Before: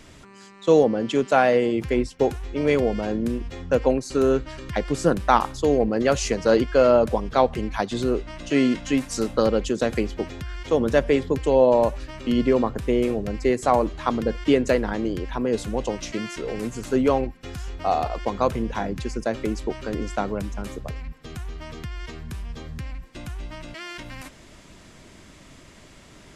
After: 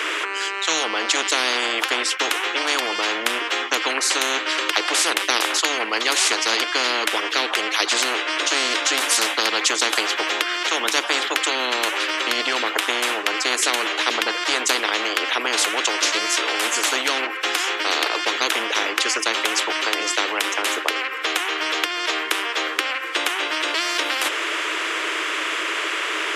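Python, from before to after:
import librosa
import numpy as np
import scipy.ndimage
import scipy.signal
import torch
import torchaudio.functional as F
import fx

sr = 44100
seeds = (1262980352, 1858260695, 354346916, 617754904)

y = scipy.signal.sosfilt(scipy.signal.cheby1(6, 6, 310.0, 'highpass', fs=sr, output='sos'), x)
y = fx.band_shelf(y, sr, hz=2000.0, db=11.5, octaves=1.7)
y = fx.spectral_comp(y, sr, ratio=10.0)
y = F.gain(torch.from_numpy(y), -2.0).numpy()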